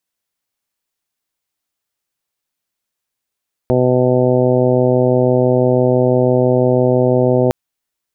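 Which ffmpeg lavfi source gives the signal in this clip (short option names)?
-f lavfi -i "aevalsrc='0.15*sin(2*PI*126*t)+0.133*sin(2*PI*252*t)+0.158*sin(2*PI*378*t)+0.168*sin(2*PI*504*t)+0.119*sin(2*PI*630*t)+0.0422*sin(2*PI*756*t)+0.0335*sin(2*PI*882*t)':d=3.81:s=44100"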